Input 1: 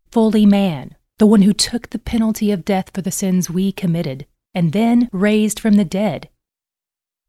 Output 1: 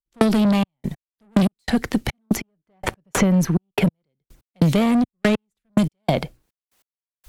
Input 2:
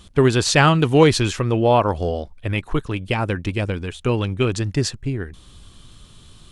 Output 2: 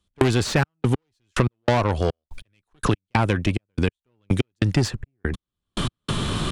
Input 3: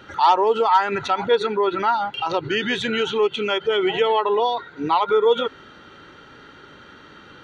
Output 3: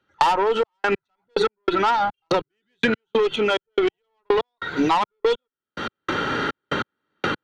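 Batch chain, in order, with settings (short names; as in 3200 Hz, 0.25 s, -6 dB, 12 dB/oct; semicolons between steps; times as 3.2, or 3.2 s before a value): tube stage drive 17 dB, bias 0.3; step gate "..xxxx..x....x" 143 bpm -60 dB; three-band squash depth 100%; gain +4.5 dB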